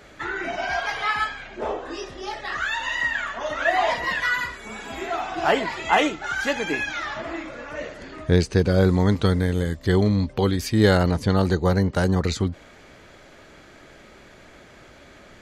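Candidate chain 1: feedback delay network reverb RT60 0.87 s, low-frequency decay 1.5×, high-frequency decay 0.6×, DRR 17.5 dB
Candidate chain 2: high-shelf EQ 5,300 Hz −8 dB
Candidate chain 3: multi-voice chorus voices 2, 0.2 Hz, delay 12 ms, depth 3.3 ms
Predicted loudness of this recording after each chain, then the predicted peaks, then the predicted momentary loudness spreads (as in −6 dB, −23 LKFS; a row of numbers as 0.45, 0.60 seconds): −23.0, −23.5, −25.5 LKFS; −4.0, −4.5, −8.0 dBFS; 14, 14, 14 LU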